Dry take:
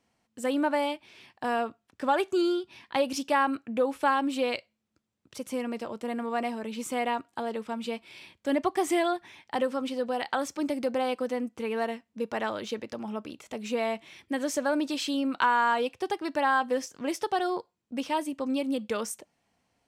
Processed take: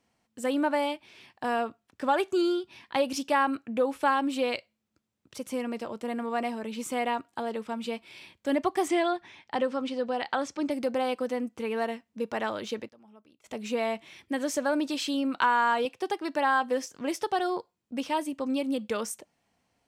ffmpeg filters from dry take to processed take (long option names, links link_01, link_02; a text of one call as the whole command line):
ffmpeg -i in.wav -filter_complex "[0:a]asettb=1/sr,asplit=3[link_01][link_02][link_03];[link_01]atrim=end=8.884[link_04];[link_02]atrim=start=8.88:end=10.71,asetpts=PTS-STARTPTS,afade=type=in:duration=0.004:curve=qsin,afade=type=out:start_time=1.826:duration=0.004:curve=qsin,lowpass=6400[link_05];[link_03]atrim=start=10.706[link_06];[link_04][link_05]acrossfade=duration=0.004:curve1=hsin:curve2=qsin[link_07];[link_07][link_06]acrossfade=duration=0.004:curve1=qsin:curve2=hsin,asettb=1/sr,asplit=3[link_08][link_09][link_10];[link_08]atrim=end=15.854[link_11];[link_09]atrim=start=15.85:end=16.89,asetpts=PTS-STARTPTS,afade=type=in:duration=0.004:curve=qsin,afade=type=out:start_time=1.036:duration=0.004:curve=qsin,highpass=160[link_12];[link_10]atrim=start=16.886[link_13];[link_11][link_12]acrossfade=duration=0.004:curve1=hsin:curve2=qsin[link_14];[link_14][link_13]acrossfade=duration=0.004:curve1=qsin:curve2=hsin,asplit=3[link_15][link_16][link_17];[link_15]atrim=end=12.89,asetpts=PTS-STARTPTS,afade=type=out:start_time=12.76:duration=0.13:curve=log:silence=0.1[link_18];[link_16]atrim=start=12.89:end=13.44,asetpts=PTS-STARTPTS,volume=-20dB[link_19];[link_17]atrim=start=13.44,asetpts=PTS-STARTPTS,afade=type=in:duration=0.13:curve=log:silence=0.1[link_20];[link_18][link_19][link_20]concat=n=3:v=0:a=1" out.wav